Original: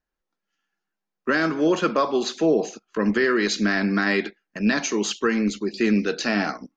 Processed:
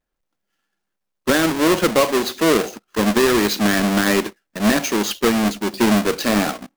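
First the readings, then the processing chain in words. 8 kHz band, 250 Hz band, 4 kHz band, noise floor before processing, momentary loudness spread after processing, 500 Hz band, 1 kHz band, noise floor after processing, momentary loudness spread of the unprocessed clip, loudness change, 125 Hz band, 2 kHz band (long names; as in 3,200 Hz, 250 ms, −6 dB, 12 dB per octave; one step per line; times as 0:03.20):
can't be measured, +4.0 dB, +7.0 dB, −84 dBFS, 5 LU, +4.5 dB, +5.5 dB, −78 dBFS, 5 LU, +4.5 dB, +5.0 dB, +2.0 dB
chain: each half-wave held at its own peak
parametric band 560 Hz +3.5 dB 0.23 octaves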